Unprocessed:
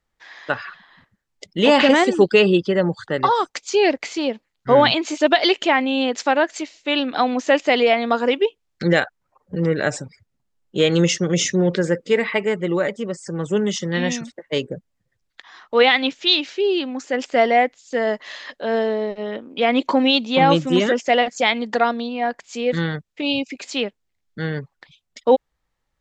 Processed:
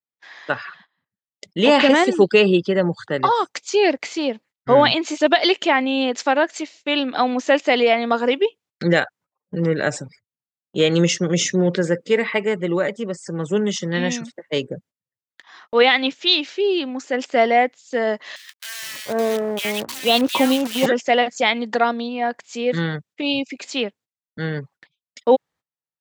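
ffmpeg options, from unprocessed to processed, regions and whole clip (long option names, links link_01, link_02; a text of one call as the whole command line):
ffmpeg -i in.wav -filter_complex "[0:a]asettb=1/sr,asplit=3[link_01][link_02][link_03];[link_01]atrim=end=18.364[link_04];[link_02]atrim=start=18.36:end=20.86,asetpts=PTS-STARTPTS,afade=type=in:duration=0.004:curve=qsin,afade=type=out:start_time=2.496:duration=0.004:curve=qsin,equalizer=frequency=90:width=4.5:gain=11.5,acrusher=bits=5:dc=4:mix=0:aa=0.000001,acrossover=split=1600[link_05][link_06];[link_05]adelay=460[link_07];[link_07][link_06]amix=inputs=2:normalize=0,atrim=end_sample=110250[link_08];[link_03]atrim=start=20.856[link_09];[link_04][link_08]acrossfade=duration=0.004:curve1=hsin:curve2=qsin[link_10];[link_10][link_09]acrossfade=duration=0.004:curve1=qsin:curve2=hsin,highpass=frequency=100:width=0.5412,highpass=frequency=100:width=1.3066,agate=range=-23dB:threshold=-46dB:ratio=16:detection=peak" out.wav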